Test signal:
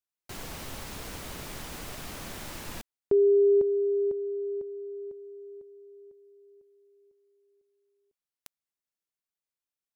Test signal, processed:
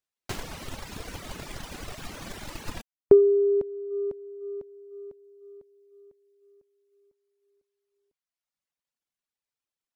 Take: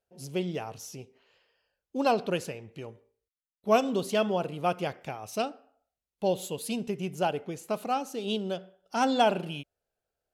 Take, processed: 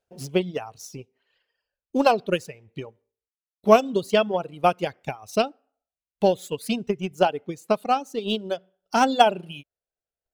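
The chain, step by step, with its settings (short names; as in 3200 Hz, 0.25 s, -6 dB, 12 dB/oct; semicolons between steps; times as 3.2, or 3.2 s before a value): median filter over 3 samples; reverb removal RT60 1.4 s; transient shaper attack +7 dB, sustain -2 dB; gain +3.5 dB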